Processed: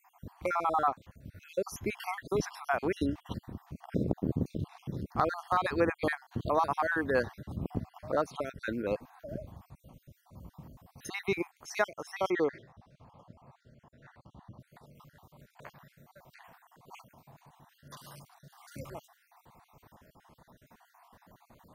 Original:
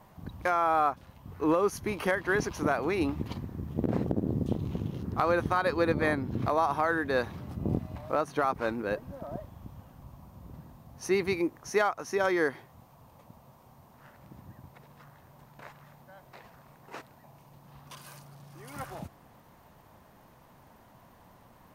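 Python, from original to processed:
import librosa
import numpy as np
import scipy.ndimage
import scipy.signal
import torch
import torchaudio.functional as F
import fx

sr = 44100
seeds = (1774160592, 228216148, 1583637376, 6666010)

y = fx.spec_dropout(x, sr, seeds[0], share_pct=49)
y = fx.lowpass(y, sr, hz=4800.0, slope=12, at=(12.3, 14.6))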